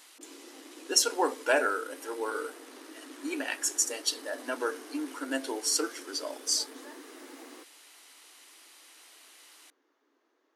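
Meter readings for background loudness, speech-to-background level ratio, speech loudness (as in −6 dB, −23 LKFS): −49.5 LKFS, 19.0 dB, −30.5 LKFS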